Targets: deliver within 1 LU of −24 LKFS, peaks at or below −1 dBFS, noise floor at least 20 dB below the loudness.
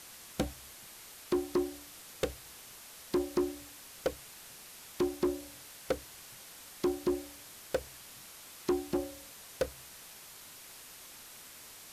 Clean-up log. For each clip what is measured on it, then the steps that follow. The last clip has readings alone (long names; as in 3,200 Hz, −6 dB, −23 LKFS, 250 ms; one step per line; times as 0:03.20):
share of clipped samples 0.9%; peaks flattened at −23.5 dBFS; background noise floor −51 dBFS; target noise floor −59 dBFS; integrated loudness −38.5 LKFS; sample peak −23.5 dBFS; target loudness −24.0 LKFS
→ clipped peaks rebuilt −23.5 dBFS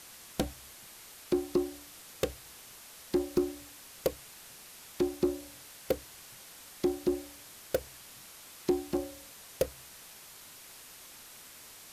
share of clipped samples 0.0%; background noise floor −51 dBFS; target noise floor −55 dBFS
→ noise reduction from a noise print 6 dB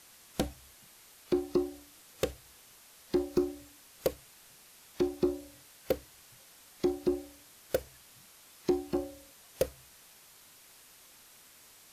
background noise floor −57 dBFS; integrated loudness −34.5 LKFS; sample peak −14.5 dBFS; target loudness −24.0 LKFS
→ level +10.5 dB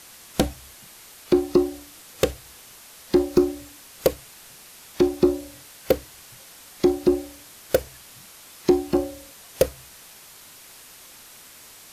integrated loudness −24.0 LKFS; sample peak −4.0 dBFS; background noise floor −47 dBFS